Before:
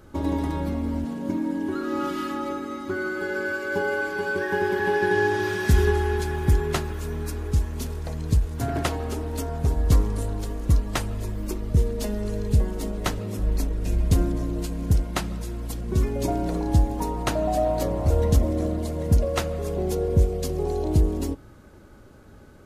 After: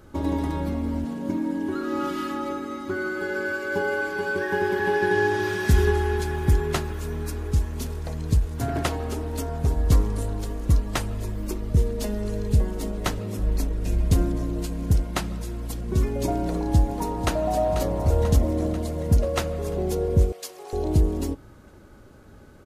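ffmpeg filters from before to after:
ffmpeg -i in.wav -filter_complex "[0:a]asplit=2[link_01][link_02];[link_02]afade=type=in:start_time=16.39:duration=0.01,afade=type=out:start_time=17.35:duration=0.01,aecho=0:1:490|980|1470|1960|2450|2940|3430|3920|4410:0.316228|0.205548|0.133606|0.0868441|0.0564486|0.0366916|0.0238495|0.0155022|0.0100764[link_03];[link_01][link_03]amix=inputs=2:normalize=0,asettb=1/sr,asplit=3[link_04][link_05][link_06];[link_04]atrim=end=20.324[link_07];[link_05]atrim=start=20.32:end=20.73,asetpts=PTS-STARTPTS,afade=type=in:duration=0.004:curve=qsin,afade=type=out:start_time=0.406:duration=0.004:curve=qsin,highpass=980[link_08];[link_06]atrim=start=20.726[link_09];[link_07][link_08]acrossfade=duration=0.004:curve1=hsin:curve2=qsin[link_10];[link_10][link_09]acrossfade=duration=0.004:curve1=qsin:curve2=hsin" out.wav

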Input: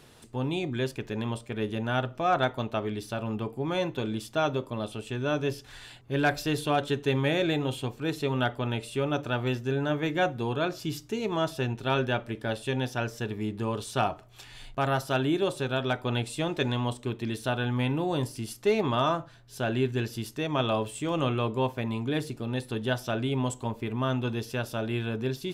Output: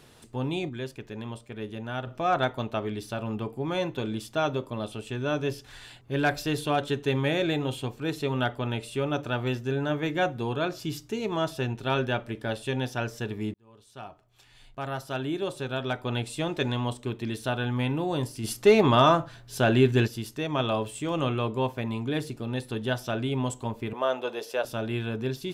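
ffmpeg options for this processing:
ffmpeg -i in.wav -filter_complex "[0:a]asplit=3[link_01][link_02][link_03];[link_01]afade=type=out:start_time=18.43:duration=0.02[link_04];[link_02]acontrast=76,afade=type=in:start_time=18.43:duration=0.02,afade=type=out:start_time=20.06:duration=0.02[link_05];[link_03]afade=type=in:start_time=20.06:duration=0.02[link_06];[link_04][link_05][link_06]amix=inputs=3:normalize=0,asettb=1/sr,asplit=3[link_07][link_08][link_09];[link_07]atrim=end=23.934[link_10];[link_08]atrim=start=23.93:end=24.65,asetpts=PTS-STARTPTS,afade=type=in:duration=0.004:curve=qsin,afade=type=out:start_time=0.716:duration=0.004:curve=qsin,highpass=frequency=540:width_type=q:width=2.6[link_11];[link_09]atrim=start=24.646[link_12];[link_10][link_11]acrossfade=duration=0.004:curve1=hsin:curve2=qsin[link_13];[link_13][link_12]acrossfade=duration=0.004:curve1=qsin:curve2=hsin,asplit=4[link_14][link_15][link_16][link_17];[link_14]atrim=end=0.692[link_18];[link_15]atrim=start=0.688:end=2.072,asetpts=PTS-STARTPTS,volume=-5.5dB[link_19];[link_16]atrim=start=2.068:end=13.54,asetpts=PTS-STARTPTS,afade=type=out:start_time=11.468:duration=0.004:curve=hsin[link_20];[link_17]atrim=start=13.54,asetpts=PTS-STARTPTS,afade=type=in:duration=2.88[link_21];[link_18][link_19]acrossfade=duration=0.004:curve1=hsin:curve2=hsin[link_22];[link_20][link_21]concat=n=2:v=0:a=1[link_23];[link_22][link_23]acrossfade=duration=0.004:curve1=hsin:curve2=hsin" out.wav

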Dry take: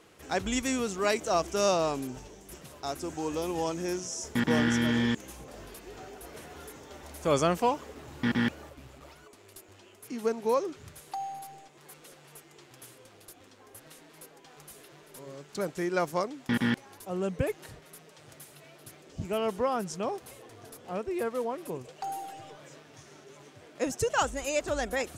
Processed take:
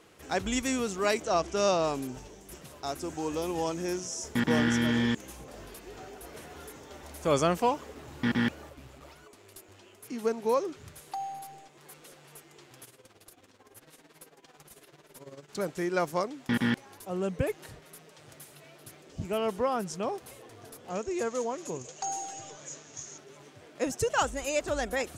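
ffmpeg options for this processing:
ffmpeg -i in.wav -filter_complex "[0:a]asettb=1/sr,asplit=3[link_01][link_02][link_03];[link_01]atrim=end=1.224[link_04];[link_02]atrim=start=1.22:end=1.84,asetpts=PTS-STARTPTS,afade=type=in:duration=0.004:curve=qsin,afade=type=out:start_time=0.616:duration=0.004:curve=qsin,lowpass=6600[link_05];[link_03]atrim=start=1.836[link_06];[link_04][link_05]acrossfade=duration=0.004:curve1=hsin:curve2=qsin[link_07];[link_07][link_06]acrossfade=duration=0.004:curve1=qsin:curve2=hsin,asplit=3[link_08][link_09][link_10];[link_08]afade=type=out:start_time=12.84:duration=0.02[link_11];[link_09]tremolo=f=18:d=0.73,afade=type=in:start_time=12.84:duration=0.02,afade=type=out:start_time=15.48:duration=0.02[link_12];[link_10]afade=type=in:start_time=15.48:duration=0.02[link_13];[link_11][link_12][link_13]amix=inputs=3:normalize=0,asettb=1/sr,asplit=3[link_14][link_15][link_16];[link_14]atrim=end=20.904[link_17];[link_15]atrim=start=20.9:end=23.18,asetpts=PTS-STARTPTS,afade=type=in:duration=0.004:curve=qsin,afade=type=out:start_time=2.276:duration=0.004:curve=qsin,lowpass=frequency=6700:width_type=q:width=11[link_18];[link_16]atrim=start=23.176[link_19];[link_17][link_18]acrossfade=duration=0.004:curve1=hsin:curve2=qsin[link_20];[link_20][link_19]acrossfade=duration=0.004:curve1=qsin:curve2=hsin" out.wav

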